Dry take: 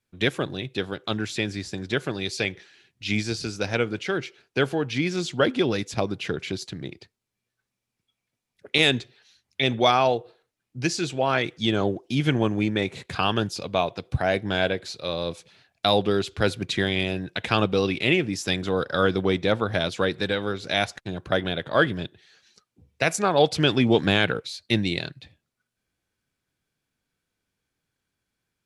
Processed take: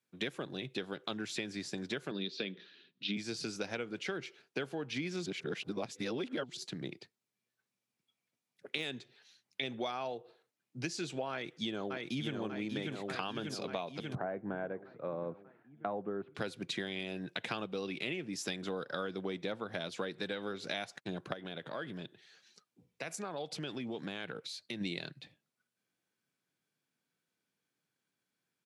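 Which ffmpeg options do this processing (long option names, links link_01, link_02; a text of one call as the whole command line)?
ffmpeg -i in.wav -filter_complex "[0:a]asettb=1/sr,asplit=3[link_01][link_02][link_03];[link_01]atrim=end=2.114[link_04];[link_02]atrim=start=2.11:end=3.17,asetpts=PTS-STARTPTS,afade=type=in:duration=0.004:curve=qsin,afade=type=out:start_time=1.056:duration=0.004:curve=qsin,highpass=frequency=150:width=0.5412,highpass=frequency=150:width=1.3066,equalizer=frequency=190:width_type=q:width=4:gain=7,equalizer=frequency=270:width_type=q:width=4:gain=6,equalizer=frequency=430:width_type=q:width=4:gain=3,equalizer=frequency=790:width_type=q:width=4:gain=-10,equalizer=frequency=2100:width_type=q:width=4:gain=-6,equalizer=frequency=3700:width_type=q:width=4:gain=7,lowpass=frequency=4400:width=0.5412,lowpass=frequency=4400:width=1.3066[link_05];[link_03]atrim=start=3.166[link_06];[link_04][link_05]acrossfade=duration=0.004:curve1=hsin:curve2=qsin[link_07];[link_07][link_06]acrossfade=duration=0.004:curve1=qsin:curve2=hsin,asplit=2[link_08][link_09];[link_09]afade=type=in:start_time=11.31:duration=0.01,afade=type=out:start_time=12.36:duration=0.01,aecho=0:1:590|1180|1770|2360|2950|3540|4130|4720:0.668344|0.367589|0.202174|0.111196|0.0611576|0.0336367|0.0185002|0.0101751[link_10];[link_08][link_10]amix=inputs=2:normalize=0,asettb=1/sr,asplit=3[link_11][link_12][link_13];[link_11]atrim=end=14.154[link_14];[link_12]atrim=start=14.15:end=16.35,asetpts=PTS-STARTPTS,afade=type=in:duration=0.004:curve=qsin,afade=type=out:start_time=2.196:duration=0.004:curve=qsin,lowpass=frequency=1500:width=0.5412,lowpass=frequency=1500:width=1.3066[link_15];[link_13]atrim=start=16.346[link_16];[link_14][link_15]acrossfade=duration=0.004:curve1=hsin:curve2=qsin[link_17];[link_17][link_16]acrossfade=duration=0.004:curve1=qsin:curve2=hsin,asplit=3[link_18][link_19][link_20];[link_18]afade=type=out:start_time=21.32:duration=0.02[link_21];[link_19]acompressor=threshold=-35dB:ratio=3:attack=3.2:release=140:knee=1:detection=peak,afade=type=in:start_time=21.32:duration=0.02,afade=type=out:start_time=24.8:duration=0.02[link_22];[link_20]afade=type=in:start_time=24.8:duration=0.02[link_23];[link_21][link_22][link_23]amix=inputs=3:normalize=0,asplit=3[link_24][link_25][link_26];[link_24]atrim=end=5.262[link_27];[link_25]atrim=start=5.258:end=6.572,asetpts=PTS-STARTPTS,areverse[link_28];[link_26]atrim=start=6.568[link_29];[link_27][link_28]acrossfade=duration=0.004:curve1=hsin:curve2=hsin[link_30];[link_30][link_29]acrossfade=duration=0.004:curve1=hsin:curve2=hsin,deesser=0.45,highpass=frequency=140:width=0.5412,highpass=frequency=140:width=1.3066,acompressor=threshold=-29dB:ratio=10,volume=-5dB" out.wav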